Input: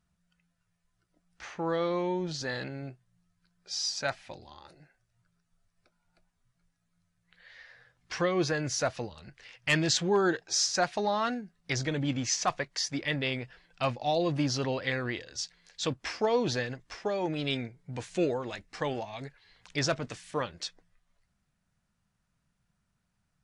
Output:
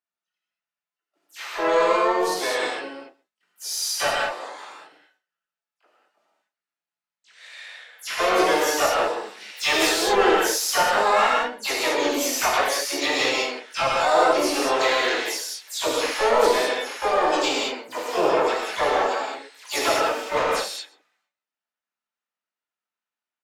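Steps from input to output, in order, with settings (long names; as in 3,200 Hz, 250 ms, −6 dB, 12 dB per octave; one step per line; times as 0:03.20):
every frequency bin delayed by itself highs early, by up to 100 ms
noise gate with hold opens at −59 dBFS
elliptic band-pass filter 260–7,400 Hz, stop band 50 dB
parametric band 1,700 Hz −2 dB 0.3 octaves
harmonic and percussive parts rebalanced harmonic −3 dB
dynamic equaliser 500 Hz, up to +5 dB, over −44 dBFS, Q 0.9
mid-hump overdrive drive 19 dB, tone 2,800 Hz, clips at −12.5 dBFS
pitch-shifted copies added +4 semitones −4 dB, +12 semitones −4 dB
on a send: single-tap delay 129 ms −23.5 dB
on the sum: reverb whose tail is shaped and stops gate 240 ms flat, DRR −4 dB
level −4 dB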